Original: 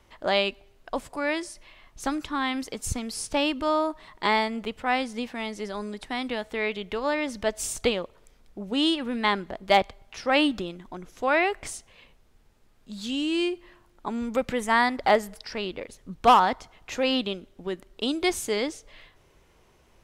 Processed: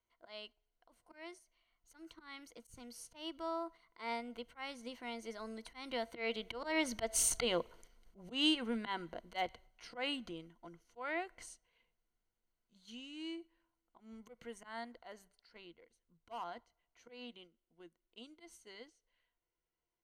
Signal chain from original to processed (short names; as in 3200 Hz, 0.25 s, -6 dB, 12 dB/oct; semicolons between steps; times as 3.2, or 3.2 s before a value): Doppler pass-by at 7.4, 21 m/s, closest 13 m; gate -55 dBFS, range -6 dB; bell 97 Hz -6.5 dB 2.7 oct; auto swell 0.152 s; ripple EQ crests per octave 1.9, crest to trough 9 dB; gain -1 dB